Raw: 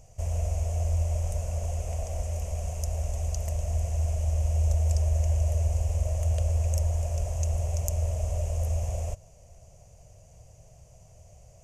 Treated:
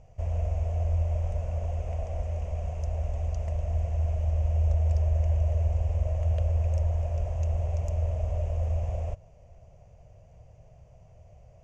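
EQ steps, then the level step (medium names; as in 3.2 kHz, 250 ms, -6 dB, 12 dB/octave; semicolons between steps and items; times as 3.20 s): low-pass 2.6 kHz 12 dB/octave; 0.0 dB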